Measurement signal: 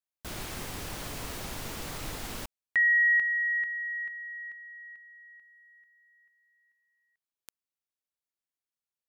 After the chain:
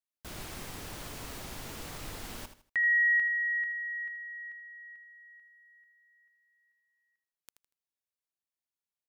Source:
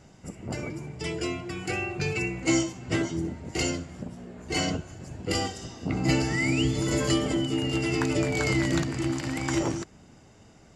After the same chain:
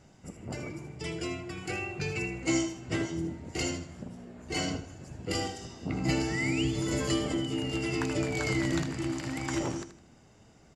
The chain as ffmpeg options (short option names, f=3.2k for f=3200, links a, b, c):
-af "aecho=1:1:79|158|237:0.282|0.0846|0.0254,volume=-4.5dB"